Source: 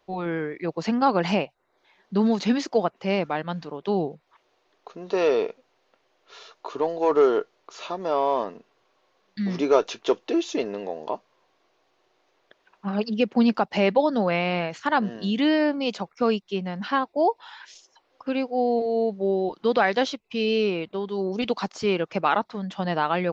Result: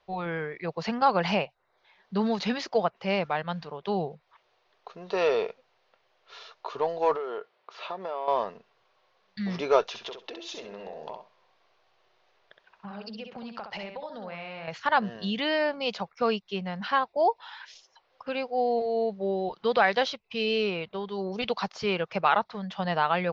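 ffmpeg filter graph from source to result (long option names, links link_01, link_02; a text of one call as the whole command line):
ffmpeg -i in.wav -filter_complex "[0:a]asettb=1/sr,asplit=3[link_01][link_02][link_03];[link_01]atrim=end=7.164[link_04];[link_02]atrim=start=7.16:end=8.28,asetpts=PTS-STARTPTS,afade=type=in:duration=0.004:curve=qsin,afade=type=out:start_time=1.116:duration=0.004:curve=qsin,highpass=200,lowpass=3700,acompressor=threshold=-27dB:ratio=5:attack=3.2:release=140:knee=1:detection=peak[link_05];[link_03]atrim=start=8.276[link_06];[link_04][link_05]acrossfade=duration=0.004:curve1=hsin:curve2=qsin[link_07];[link_07][link_06]acrossfade=duration=0.004:curve1=qsin:curve2=hsin,asettb=1/sr,asplit=3[link_08][link_09][link_10];[link_08]atrim=end=9.884[link_11];[link_09]atrim=start=9.88:end=14.68,asetpts=PTS-STARTPTS,afade=type=in:duration=0.004:curve=qsin,afade=type=out:start_time=4.796:duration=0.004:curve=qsin,acompressor=threshold=-32dB:ratio=10:attack=3.2:release=140:knee=1:detection=peak,aecho=1:1:65|130|195:0.501|0.0902|0.0162,atrim=end_sample=211680[link_12];[link_10]atrim=start=14.676[link_13];[link_11][link_12]acrossfade=duration=0.004:curve1=hsin:curve2=qsin[link_14];[link_14][link_13]acrossfade=duration=0.004:curve1=qsin:curve2=hsin,lowpass=frequency=5500:width=0.5412,lowpass=frequency=5500:width=1.3066,equalizer=frequency=290:width=1.9:gain=-13.5" out.wav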